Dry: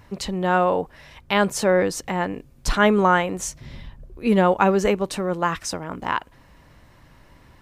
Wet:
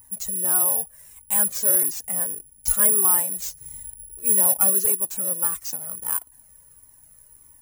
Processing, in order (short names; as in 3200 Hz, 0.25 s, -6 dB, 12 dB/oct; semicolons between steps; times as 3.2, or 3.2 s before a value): careless resampling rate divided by 4×, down none, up zero stuff; resonant high shelf 4900 Hz +8 dB, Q 1.5; cascading flanger falling 1.6 Hz; gain -10 dB